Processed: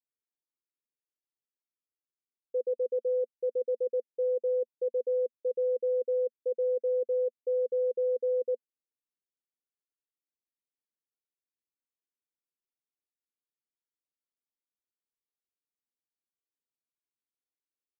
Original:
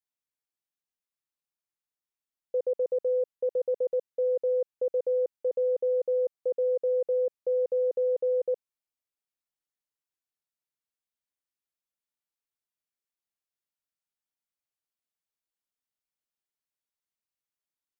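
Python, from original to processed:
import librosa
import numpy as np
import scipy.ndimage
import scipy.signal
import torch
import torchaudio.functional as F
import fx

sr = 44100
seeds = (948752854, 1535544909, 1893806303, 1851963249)

y = scipy.signal.sosfilt(scipy.signal.ellip(3, 1.0, 40, [230.0, 510.0], 'bandpass', fs=sr, output='sos'), x)
y = y * librosa.db_to_amplitude(-1.5)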